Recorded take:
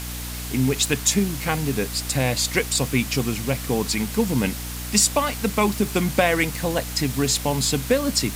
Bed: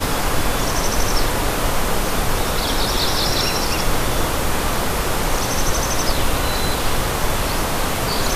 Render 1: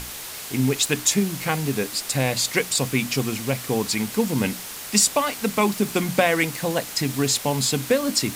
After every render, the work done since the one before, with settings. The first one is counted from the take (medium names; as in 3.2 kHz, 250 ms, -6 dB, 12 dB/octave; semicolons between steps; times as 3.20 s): hum notches 60/120/180/240/300 Hz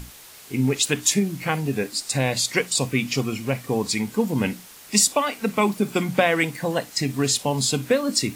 noise print and reduce 10 dB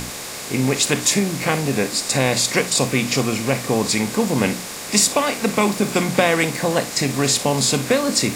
spectral levelling over time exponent 0.6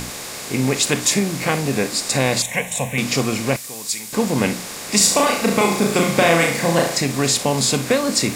2.42–2.98 s: static phaser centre 1.3 kHz, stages 6; 3.56–4.13 s: pre-emphasis filter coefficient 0.9; 4.97–6.99 s: flutter echo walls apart 6.1 m, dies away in 0.55 s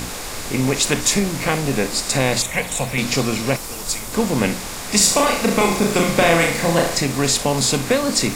add bed -14.5 dB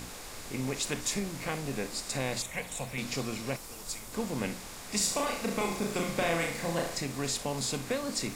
trim -14.5 dB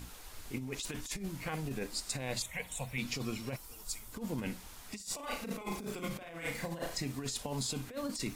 expander on every frequency bin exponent 1.5; compressor with a negative ratio -37 dBFS, ratio -0.5